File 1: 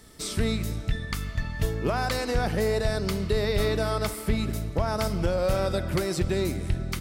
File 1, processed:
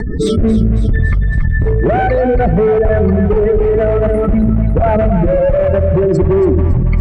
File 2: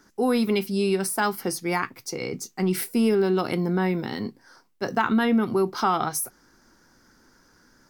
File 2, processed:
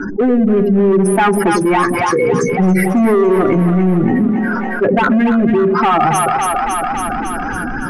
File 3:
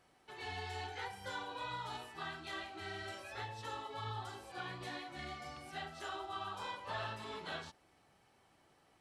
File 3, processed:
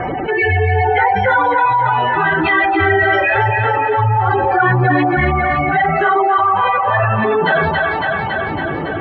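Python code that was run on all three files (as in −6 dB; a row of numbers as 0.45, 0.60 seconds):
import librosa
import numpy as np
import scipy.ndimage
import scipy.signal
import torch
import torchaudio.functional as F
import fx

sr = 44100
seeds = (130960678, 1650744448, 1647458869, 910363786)

y = fx.spec_expand(x, sr, power=2.2)
y = fx.notch(y, sr, hz=1300.0, q=25.0)
y = fx.spec_gate(y, sr, threshold_db=-30, keep='strong')
y = scipy.signal.sosfilt(scipy.signal.bessel(8, 9000.0, 'lowpass', norm='mag', fs=sr, output='sos'), y)
y = fx.rider(y, sr, range_db=3, speed_s=2.0)
y = np.clip(y, -10.0 ** (-23.5 / 20.0), 10.0 ** (-23.5 / 20.0))
y = fx.high_shelf_res(y, sr, hz=3300.0, db=-11.0, q=1.5)
y = fx.rotary(y, sr, hz=0.6)
y = fx.echo_split(y, sr, split_hz=570.0, low_ms=95, high_ms=278, feedback_pct=52, wet_db=-7.5)
y = fx.env_flatten(y, sr, amount_pct=70)
y = y * 10.0 ** (-2 / 20.0) / np.max(np.abs(y))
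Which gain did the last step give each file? +14.0, +12.5, +28.0 decibels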